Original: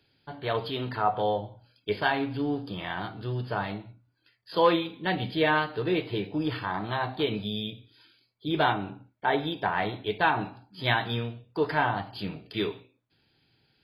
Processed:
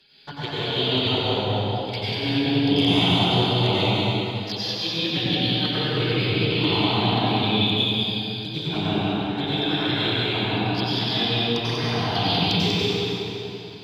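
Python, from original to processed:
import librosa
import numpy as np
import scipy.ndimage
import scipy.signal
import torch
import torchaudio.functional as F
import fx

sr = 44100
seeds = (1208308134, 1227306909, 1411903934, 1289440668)

p1 = fx.peak_eq(x, sr, hz=4100.0, db=11.5, octaves=2.2)
p2 = fx.over_compress(p1, sr, threshold_db=-30.0, ratio=-0.5)
p3 = fx.clip_asym(p2, sr, top_db=-16.5, bottom_db=-14.0)
p4 = fx.env_flanger(p3, sr, rest_ms=5.5, full_db=-27.0)
p5 = p4 + fx.echo_single(p4, sr, ms=192, db=-3.5, dry=0)
y = fx.rev_plate(p5, sr, seeds[0], rt60_s=3.0, hf_ratio=0.85, predelay_ms=80, drr_db=-8.5)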